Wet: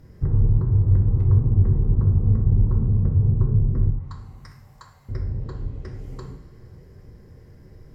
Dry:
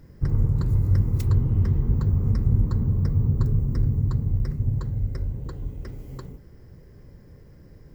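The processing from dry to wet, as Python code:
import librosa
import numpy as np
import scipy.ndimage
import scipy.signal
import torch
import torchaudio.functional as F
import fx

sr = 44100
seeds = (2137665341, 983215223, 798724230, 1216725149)

y = fx.cheby2_highpass(x, sr, hz=220.0, order=4, stop_db=60, at=(3.9, 5.09))
y = fx.env_lowpass_down(y, sr, base_hz=970.0, full_db=-19.5)
y = fx.rev_double_slope(y, sr, seeds[0], early_s=0.55, late_s=3.1, knee_db=-16, drr_db=2.5)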